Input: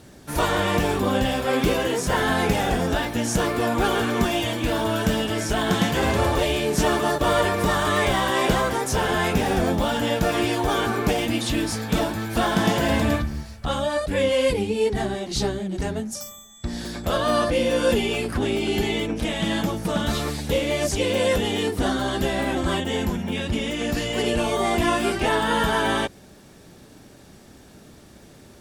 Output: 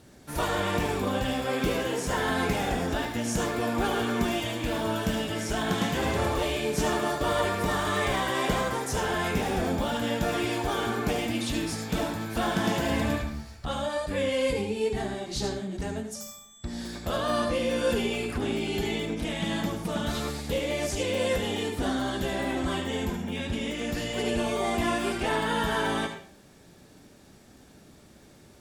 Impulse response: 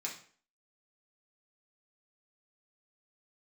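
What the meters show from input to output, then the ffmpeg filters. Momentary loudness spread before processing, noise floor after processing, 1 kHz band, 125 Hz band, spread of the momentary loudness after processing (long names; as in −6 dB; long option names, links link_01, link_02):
5 LU, −53 dBFS, −5.5 dB, −6.0 dB, 5 LU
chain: -filter_complex "[0:a]asplit=2[link_01][link_02];[1:a]atrim=start_sample=2205,adelay=73[link_03];[link_02][link_03]afir=irnorm=-1:irlink=0,volume=-6dB[link_04];[link_01][link_04]amix=inputs=2:normalize=0,volume=-6.5dB"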